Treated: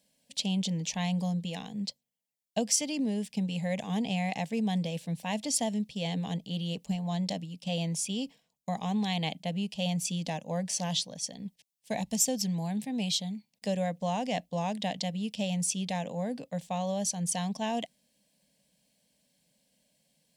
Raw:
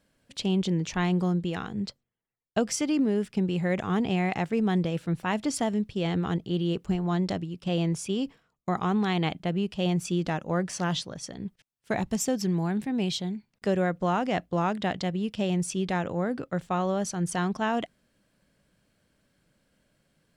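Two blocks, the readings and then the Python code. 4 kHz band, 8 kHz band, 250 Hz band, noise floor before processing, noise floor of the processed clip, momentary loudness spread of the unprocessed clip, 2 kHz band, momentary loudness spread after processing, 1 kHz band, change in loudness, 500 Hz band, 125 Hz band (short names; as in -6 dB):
+2.0 dB, +5.5 dB, -4.5 dB, -76 dBFS, -80 dBFS, 7 LU, -6.5 dB, 8 LU, -5.0 dB, -3.5 dB, -6.0 dB, -4.5 dB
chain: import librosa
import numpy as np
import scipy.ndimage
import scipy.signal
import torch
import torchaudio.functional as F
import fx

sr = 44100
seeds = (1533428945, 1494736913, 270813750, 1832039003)

y = scipy.signal.sosfilt(scipy.signal.butter(2, 70.0, 'highpass', fs=sr, output='sos'), x)
y = fx.high_shelf(y, sr, hz=2300.0, db=10.0)
y = fx.fixed_phaser(y, sr, hz=360.0, stages=6)
y = F.gain(torch.from_numpy(y), -3.5).numpy()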